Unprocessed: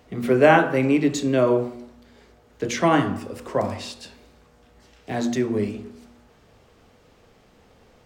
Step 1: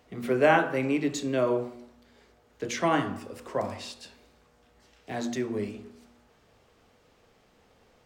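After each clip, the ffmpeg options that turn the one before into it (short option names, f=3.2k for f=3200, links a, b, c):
-af "lowshelf=f=360:g=-4.5,volume=-5dB"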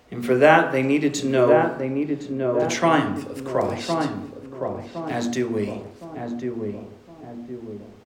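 -filter_complex "[0:a]asplit=2[a][b];[b]adelay=1063,lowpass=f=880:p=1,volume=-3.5dB,asplit=2[c][d];[d]adelay=1063,lowpass=f=880:p=1,volume=0.5,asplit=2[e][f];[f]adelay=1063,lowpass=f=880:p=1,volume=0.5,asplit=2[g][h];[h]adelay=1063,lowpass=f=880:p=1,volume=0.5,asplit=2[i][j];[j]adelay=1063,lowpass=f=880:p=1,volume=0.5,asplit=2[k][l];[l]adelay=1063,lowpass=f=880:p=1,volume=0.5,asplit=2[m][n];[n]adelay=1063,lowpass=f=880:p=1,volume=0.5[o];[a][c][e][g][i][k][m][o]amix=inputs=8:normalize=0,volume=6.5dB"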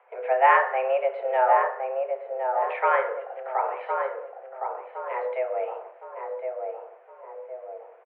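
-af "highpass=f=170:t=q:w=0.5412,highpass=f=170:t=q:w=1.307,lowpass=f=2.1k:t=q:w=0.5176,lowpass=f=2.1k:t=q:w=0.7071,lowpass=f=2.1k:t=q:w=1.932,afreqshift=260,volume=-3.5dB"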